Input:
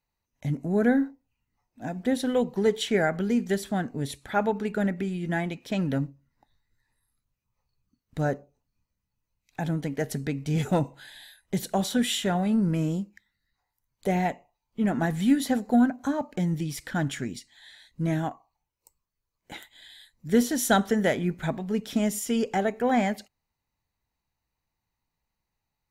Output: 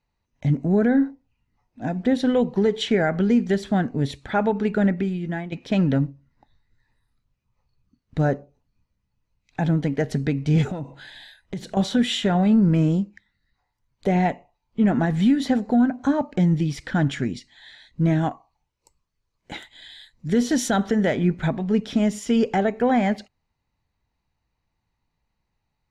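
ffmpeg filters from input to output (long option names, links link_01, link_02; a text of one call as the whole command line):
ffmpeg -i in.wav -filter_complex "[0:a]asettb=1/sr,asplit=3[link_01][link_02][link_03];[link_01]atrim=end=10.704[link_04];[link_02]atrim=start=10.7:end=11.77,asetpts=PTS-STARTPTS,afade=type=in:duration=0.004:curve=qsin,afade=type=out:start_time=1.066:duration=0.004:curve=qsin,acompressor=threshold=-34dB:ratio=5:attack=3.2:release=140:knee=1:detection=peak[link_05];[link_03]atrim=start=11.766[link_06];[link_04][link_05]acrossfade=duration=0.004:curve1=hsin:curve2=qsin[link_07];[link_07][link_06]acrossfade=duration=0.004:curve1=qsin:curve2=hsin,asettb=1/sr,asplit=3[link_08][link_09][link_10];[link_08]atrim=end=18.214[link_11];[link_09]atrim=start=18.21:end=20.69,asetpts=PTS-STARTPTS,afade=type=in:duration=0.004:curve=qsin,afade=type=out:start_time=2.476:duration=0.004:curve=qsin,highshelf=frequency=4200:gain=5.5[link_12];[link_10]atrim=start=20.686[link_13];[link_11][link_12]acrossfade=duration=0.004:curve1=hsin:curve2=qsin[link_14];[link_14][link_13]acrossfade=duration=0.004:curve1=qsin:curve2=hsin,asplit=2[link_15][link_16];[link_15]atrim=end=5.52,asetpts=PTS-STARTPTS,afade=type=out:start_time=4.89:duration=0.63:silence=0.223872[link_17];[link_16]atrim=start=5.52,asetpts=PTS-STARTPTS,afade=type=in:duration=0.004:curve=hsin:silence=0.223872[link_18];[link_17][link_18]concat=n=2:v=0:a=1,lowpass=5000,lowshelf=frequency=380:gain=4,alimiter=limit=-15dB:level=0:latency=1:release=132,volume=4.5dB" out.wav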